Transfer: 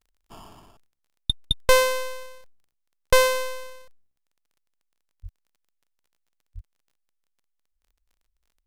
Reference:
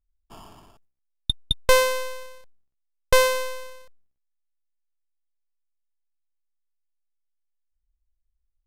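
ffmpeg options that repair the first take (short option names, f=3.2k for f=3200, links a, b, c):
-filter_complex "[0:a]adeclick=t=4,asplit=3[a][b][c];[a]afade=t=out:st=5.22:d=0.02[d];[b]highpass=f=140:w=0.5412,highpass=f=140:w=1.3066,afade=t=in:st=5.22:d=0.02,afade=t=out:st=5.34:d=0.02[e];[c]afade=t=in:st=5.34:d=0.02[f];[d][e][f]amix=inputs=3:normalize=0,asplit=3[g][h][i];[g]afade=t=out:st=6.54:d=0.02[j];[h]highpass=f=140:w=0.5412,highpass=f=140:w=1.3066,afade=t=in:st=6.54:d=0.02,afade=t=out:st=6.66:d=0.02[k];[i]afade=t=in:st=6.66:d=0.02[l];[j][k][l]amix=inputs=3:normalize=0"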